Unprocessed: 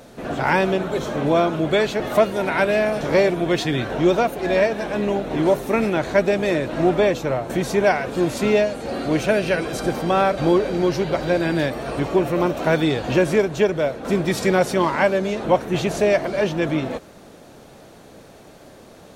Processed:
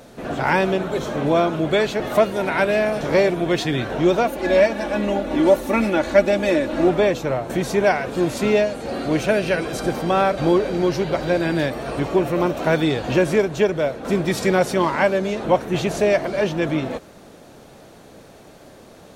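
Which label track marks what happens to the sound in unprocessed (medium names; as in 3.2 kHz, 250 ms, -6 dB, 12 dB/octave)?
4.260000	6.880000	comb 3.5 ms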